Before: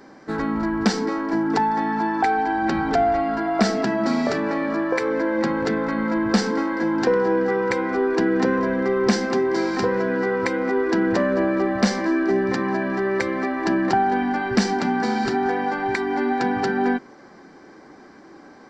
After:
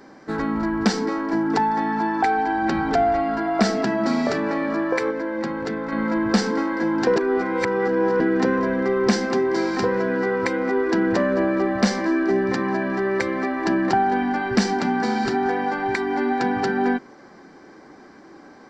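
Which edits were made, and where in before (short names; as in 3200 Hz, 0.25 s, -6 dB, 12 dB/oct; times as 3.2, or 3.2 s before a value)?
5.11–5.92 gain -4.5 dB
7.16–8.2 reverse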